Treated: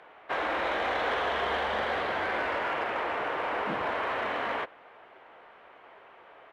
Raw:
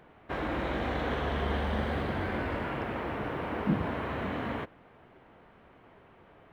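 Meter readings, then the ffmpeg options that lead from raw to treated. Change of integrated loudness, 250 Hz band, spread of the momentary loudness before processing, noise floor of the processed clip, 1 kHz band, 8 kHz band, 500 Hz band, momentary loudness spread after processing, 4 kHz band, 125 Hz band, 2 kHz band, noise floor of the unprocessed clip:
+2.5 dB, -8.0 dB, 5 LU, -54 dBFS, +6.0 dB, n/a, +3.0 dB, 3 LU, +6.0 dB, -15.0 dB, +6.5 dB, -58 dBFS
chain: -filter_complex "[0:a]acrossover=split=450 5600:gain=0.0708 1 0.224[a][b][c];[a][b][c]amix=inputs=3:normalize=0,asplit=2[d][e];[e]volume=35.5dB,asoftclip=hard,volume=-35.5dB,volume=-6.5dB[f];[d][f]amix=inputs=2:normalize=0,aresample=32000,aresample=44100,volume=4dB"

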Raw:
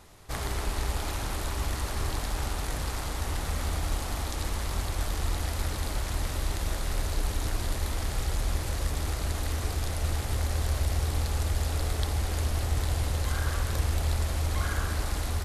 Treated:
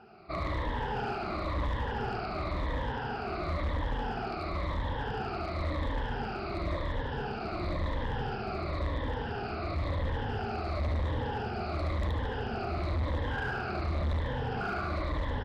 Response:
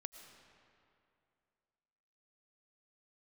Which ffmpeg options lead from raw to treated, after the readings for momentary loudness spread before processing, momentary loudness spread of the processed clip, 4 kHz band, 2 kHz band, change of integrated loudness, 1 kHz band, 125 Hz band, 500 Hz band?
4 LU, 3 LU, -7.0 dB, 0.0 dB, -3.0 dB, +3.0 dB, -4.0 dB, +3.5 dB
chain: -af "afftfilt=real='re*pow(10,19/40*sin(2*PI*(1.1*log(max(b,1)*sr/1024/100)/log(2)-(-0.96)*(pts-256)/sr)))':imag='im*pow(10,19/40*sin(2*PI*(1.1*log(max(b,1)*sr/1024/100)/log(2)-(-0.96)*(pts-256)/sr)))':win_size=1024:overlap=0.75,aresample=11025,aresample=44100,highpass=f=140:p=1,aemphasis=mode=reproduction:type=75kf,aecho=1:1:73|146|219|292|365|438|511:0.531|0.297|0.166|0.0932|0.0522|0.0292|0.0164,volume=27dB,asoftclip=hard,volume=-27dB,highshelf=f=2.8k:g=-9"

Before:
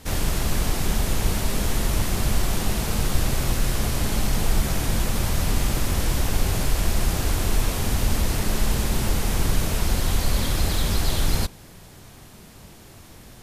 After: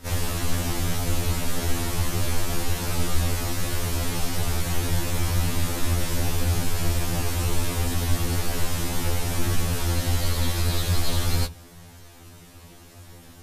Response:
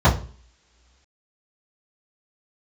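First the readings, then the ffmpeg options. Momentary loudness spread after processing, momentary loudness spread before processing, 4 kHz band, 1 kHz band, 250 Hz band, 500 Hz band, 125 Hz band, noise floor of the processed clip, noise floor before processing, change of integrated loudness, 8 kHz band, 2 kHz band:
3 LU, 1 LU, -1.0 dB, -1.5 dB, -2.5 dB, -1.5 dB, 0.0 dB, -47 dBFS, -46 dBFS, -1.5 dB, -1.5 dB, -1.5 dB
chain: -filter_complex "[0:a]asplit=2[a][b];[1:a]atrim=start_sample=2205,lowshelf=f=140:g=-6,highshelf=f=7.3k:g=9.5[c];[b][c]afir=irnorm=-1:irlink=0,volume=-39.5dB[d];[a][d]amix=inputs=2:normalize=0,afftfilt=real='re*2*eq(mod(b,4),0)':imag='im*2*eq(mod(b,4),0)':win_size=2048:overlap=0.75,volume=1dB"

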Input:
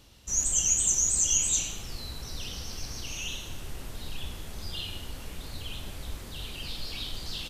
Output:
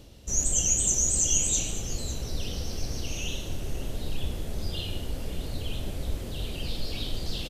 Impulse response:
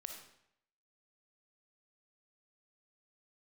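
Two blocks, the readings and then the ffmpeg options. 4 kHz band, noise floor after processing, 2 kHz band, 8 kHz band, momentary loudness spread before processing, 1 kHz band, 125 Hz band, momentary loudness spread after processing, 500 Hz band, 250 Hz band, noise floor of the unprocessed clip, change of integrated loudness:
0.0 dB, -37 dBFS, -0.5 dB, 0.0 dB, 19 LU, +1.5 dB, +7.0 dB, 14 LU, +8.5 dB, +7.5 dB, -42 dBFS, -0.5 dB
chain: -af "lowshelf=f=770:t=q:w=1.5:g=7,areverse,acompressor=mode=upward:threshold=-38dB:ratio=2.5,areverse,aecho=1:1:554:0.178"

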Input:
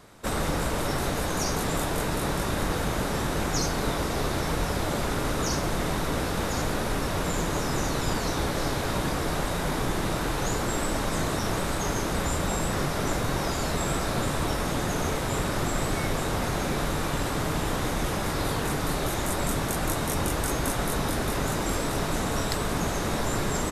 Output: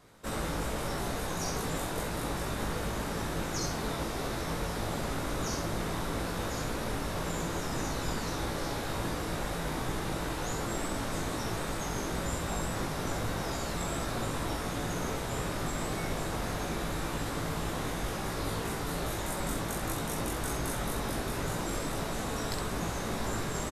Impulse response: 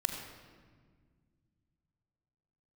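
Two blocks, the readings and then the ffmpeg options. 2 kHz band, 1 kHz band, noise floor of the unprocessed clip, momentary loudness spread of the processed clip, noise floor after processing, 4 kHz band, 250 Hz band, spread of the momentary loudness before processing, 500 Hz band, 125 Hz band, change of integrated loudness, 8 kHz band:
-6.0 dB, -6.0 dB, -29 dBFS, 1 LU, -35 dBFS, -6.0 dB, -6.0 dB, 1 LU, -6.5 dB, -6.5 dB, -6.0 dB, -6.0 dB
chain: -af "aecho=1:1:18|65:0.631|0.562,volume=-8.5dB"

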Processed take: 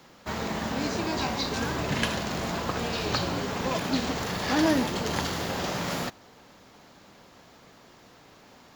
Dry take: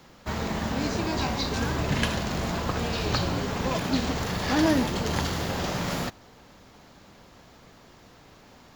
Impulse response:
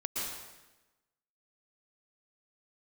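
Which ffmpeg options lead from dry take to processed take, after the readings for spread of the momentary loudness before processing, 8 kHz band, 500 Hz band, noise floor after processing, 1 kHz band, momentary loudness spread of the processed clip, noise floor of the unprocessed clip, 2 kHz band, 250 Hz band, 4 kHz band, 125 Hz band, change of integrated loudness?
6 LU, 0.0 dB, -0.5 dB, -54 dBFS, 0.0 dB, 6 LU, -53 dBFS, 0.0 dB, -1.5 dB, 0.0 dB, -4.5 dB, -1.0 dB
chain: -af "lowshelf=f=96:g=-11.5"

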